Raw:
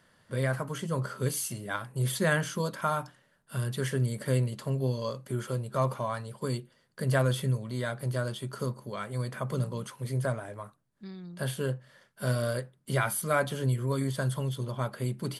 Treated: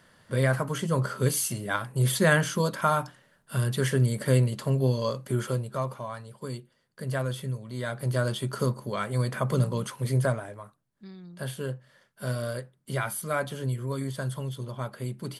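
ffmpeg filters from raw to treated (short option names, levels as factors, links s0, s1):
-af "volume=5.62,afade=t=out:st=5.45:d=0.4:silence=0.354813,afade=t=in:st=7.65:d=0.69:silence=0.316228,afade=t=out:st=10.16:d=0.44:silence=0.398107"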